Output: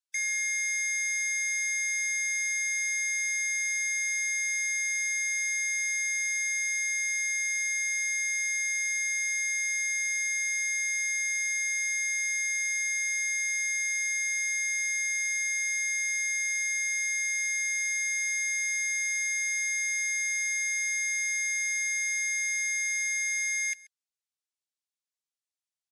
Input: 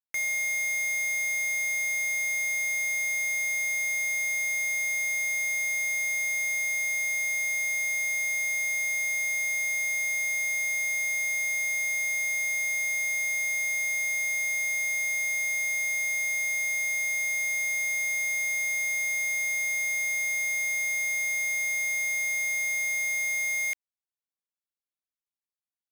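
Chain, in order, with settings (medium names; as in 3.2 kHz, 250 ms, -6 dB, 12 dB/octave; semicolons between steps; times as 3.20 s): frequency weighting ITU-R 468; harmony voices -4 st -16 dB; on a send: delay 133 ms -22 dB; on the sum: spectral gate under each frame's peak -30 dB strong; trim -8.5 dB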